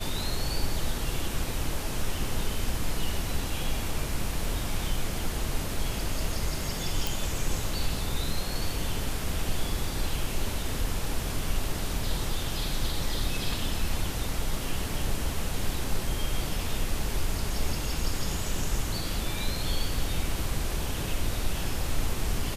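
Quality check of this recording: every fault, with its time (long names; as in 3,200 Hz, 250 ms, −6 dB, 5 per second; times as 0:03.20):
0:07.07: click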